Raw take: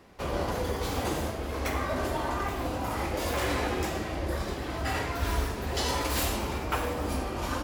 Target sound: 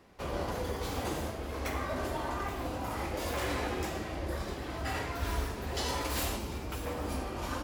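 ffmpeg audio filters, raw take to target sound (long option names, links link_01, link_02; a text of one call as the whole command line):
ffmpeg -i in.wav -filter_complex "[0:a]asettb=1/sr,asplit=3[link_01][link_02][link_03];[link_01]atrim=end=6.364[link_04];[link_02]atrim=start=6.36:end=6.86,asetpts=PTS-STARTPTS,afade=type=in:duration=0.004:curve=qsin,afade=type=out:start_time=0.496:duration=0.004:curve=qsin,acrossover=split=410|3000[link_05][link_06][link_07];[link_06]acompressor=threshold=-40dB:ratio=6[link_08];[link_05][link_08][link_07]amix=inputs=3:normalize=0[link_09];[link_03]atrim=start=6.856[link_10];[link_04][link_09]acrossfade=duration=0.004:curve1=hsin:curve2=qsin[link_11];[link_11][link_10]acrossfade=duration=0.004:curve1=qsin:curve2=hsin,volume=-4.5dB" out.wav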